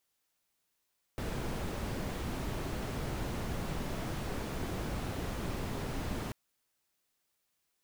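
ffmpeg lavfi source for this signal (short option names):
-f lavfi -i "anoisesrc=c=brown:a=0.0741:d=5.14:r=44100:seed=1"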